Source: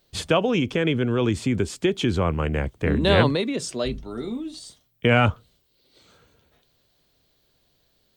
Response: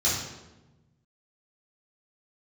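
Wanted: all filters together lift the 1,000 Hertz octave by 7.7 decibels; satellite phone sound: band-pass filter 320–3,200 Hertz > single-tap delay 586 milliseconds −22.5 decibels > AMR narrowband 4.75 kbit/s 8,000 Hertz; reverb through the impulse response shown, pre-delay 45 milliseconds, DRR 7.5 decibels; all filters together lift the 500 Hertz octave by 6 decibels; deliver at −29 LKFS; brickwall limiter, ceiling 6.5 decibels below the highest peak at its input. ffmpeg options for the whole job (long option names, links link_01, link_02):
-filter_complex "[0:a]equalizer=frequency=500:width_type=o:gain=6,equalizer=frequency=1000:width_type=o:gain=8.5,alimiter=limit=-7.5dB:level=0:latency=1,asplit=2[link_01][link_02];[1:a]atrim=start_sample=2205,adelay=45[link_03];[link_02][link_03]afir=irnorm=-1:irlink=0,volume=-19dB[link_04];[link_01][link_04]amix=inputs=2:normalize=0,highpass=320,lowpass=3200,aecho=1:1:586:0.075,volume=-6dB" -ar 8000 -c:a libopencore_amrnb -b:a 4750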